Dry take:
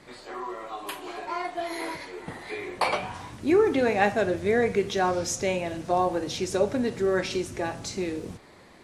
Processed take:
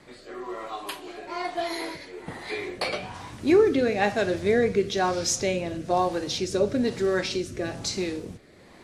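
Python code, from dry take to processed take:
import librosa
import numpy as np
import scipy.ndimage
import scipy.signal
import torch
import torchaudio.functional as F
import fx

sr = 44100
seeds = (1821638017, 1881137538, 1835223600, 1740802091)

y = fx.rotary(x, sr, hz=1.1)
y = fx.dynamic_eq(y, sr, hz=4500.0, q=1.5, threshold_db=-53.0, ratio=4.0, max_db=6)
y = y * 10.0 ** (2.5 / 20.0)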